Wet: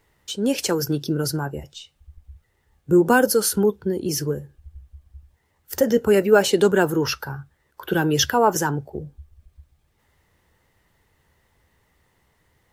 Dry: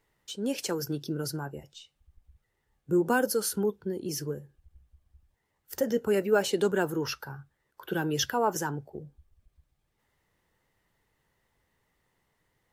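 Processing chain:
parametric band 74 Hz +9 dB 0.57 octaves
level +9 dB

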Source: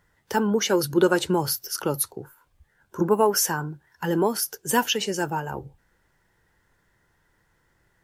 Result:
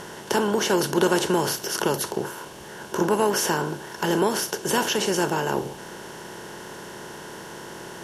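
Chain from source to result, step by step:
compressor on every frequency bin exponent 0.4
low-pass filter 11,000 Hz 12 dB per octave
level −5 dB

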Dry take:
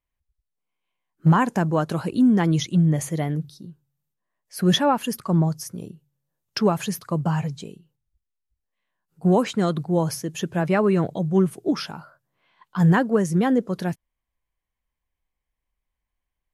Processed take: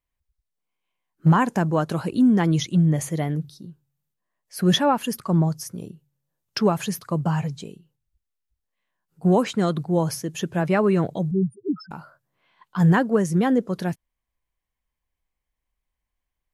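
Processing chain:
0:11.31–0:11.91: spectral peaks only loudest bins 2

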